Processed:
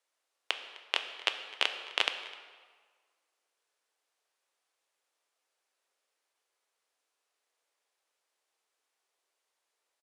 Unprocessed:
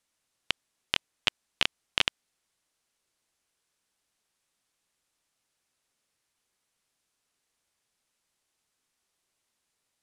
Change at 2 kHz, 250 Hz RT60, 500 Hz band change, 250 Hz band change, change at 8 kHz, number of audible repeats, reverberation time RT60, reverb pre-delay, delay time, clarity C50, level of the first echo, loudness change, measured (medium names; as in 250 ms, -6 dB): -1.5 dB, 1.4 s, +1.0 dB, -9.0 dB, -5.0 dB, 1, 1.6 s, 4 ms, 256 ms, 9.0 dB, -20.5 dB, -2.5 dB